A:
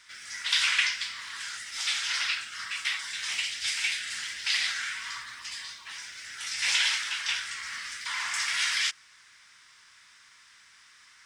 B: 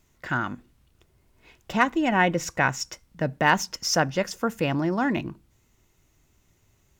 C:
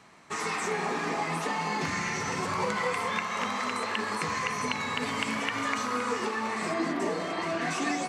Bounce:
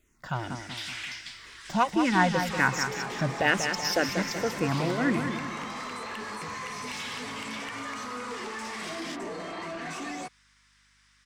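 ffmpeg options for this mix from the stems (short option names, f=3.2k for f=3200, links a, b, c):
-filter_complex "[0:a]aeval=exprs='val(0)+0.000891*(sin(2*PI*50*n/s)+sin(2*PI*2*50*n/s)/2+sin(2*PI*3*50*n/s)/3+sin(2*PI*4*50*n/s)/4+sin(2*PI*5*50*n/s)/5)':c=same,adelay=250,volume=-8dB[a];[1:a]asplit=2[b][c];[c]afreqshift=-2[d];[b][d]amix=inputs=2:normalize=1,volume=0dB,asplit=2[e][f];[f]volume=-7.5dB[g];[2:a]adelay=2200,volume=-1.5dB[h];[a][h]amix=inputs=2:normalize=0,asoftclip=type=tanh:threshold=-26.5dB,alimiter=level_in=6.5dB:limit=-24dB:level=0:latency=1,volume=-6.5dB,volume=0dB[i];[g]aecho=0:1:189|378|567|756|945|1134|1323:1|0.49|0.24|0.118|0.0576|0.0282|0.0138[j];[e][i][j]amix=inputs=3:normalize=0"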